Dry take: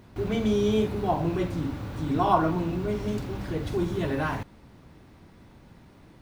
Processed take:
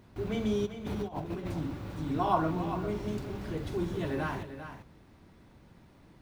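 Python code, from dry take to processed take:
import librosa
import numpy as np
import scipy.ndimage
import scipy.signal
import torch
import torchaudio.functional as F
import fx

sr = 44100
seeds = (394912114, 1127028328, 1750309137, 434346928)

y = fx.over_compress(x, sr, threshold_db=-30.0, ratio=-0.5, at=(0.65, 1.52), fade=0.02)
y = y + 10.0 ** (-10.0 / 20.0) * np.pad(y, (int(395 * sr / 1000.0), 0))[:len(y)]
y = y * librosa.db_to_amplitude(-5.5)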